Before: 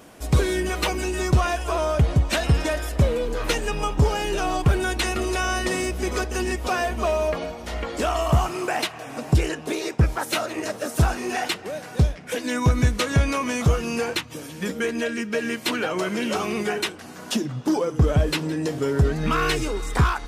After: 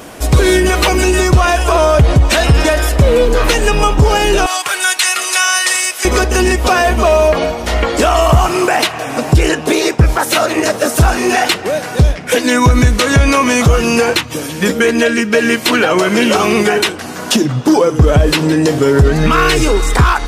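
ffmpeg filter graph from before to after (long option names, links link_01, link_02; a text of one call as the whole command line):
ffmpeg -i in.wav -filter_complex "[0:a]asettb=1/sr,asplit=3[link_01][link_02][link_03];[link_01]atrim=end=4.464[link_04];[link_02]atrim=start=4.46:end=6.05,asetpts=PTS-STARTPTS,afade=type=in:duration=0.004:curve=qsin,afade=type=out:start_time=1.586:duration=0.004:curve=qsin,highpass=1300,equalizer=frequency=9400:width_type=o:width=1.4:gain=6[link_05];[link_03]atrim=start=6.046[link_06];[link_04][link_05]acrossfade=duration=0.004:curve1=hsin:curve2=qsin[link_07];[link_07][link_06]acrossfade=duration=0.004:curve1=qsin:curve2=hsin,equalizer=frequency=180:width=1.1:gain=-2.5,alimiter=level_in=16.5dB:limit=-1dB:release=50:level=0:latency=1,volume=-1dB" out.wav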